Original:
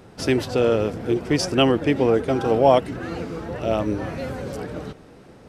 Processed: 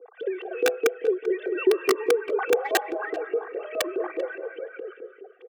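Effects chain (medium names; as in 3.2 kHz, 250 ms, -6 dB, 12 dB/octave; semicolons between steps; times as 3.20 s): formants replaced by sine waves; in parallel at -3 dB: compression 12:1, threshold -28 dBFS, peak gain reduction 18.5 dB; on the sum: overload inside the chain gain 8.5 dB; peak limiter -18.5 dBFS, peak gain reduction 10 dB; reverb removal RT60 1.6 s; on a send at -7 dB: reverberation RT60 1.5 s, pre-delay 100 ms; on the sum: LFO band-pass saw up 4.8 Hz 340–3000 Hz; integer overflow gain 20 dB; high-pass 230 Hz 24 dB/octave; comb 2.6 ms, depth 97%; speakerphone echo 390 ms, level -16 dB; trim +4 dB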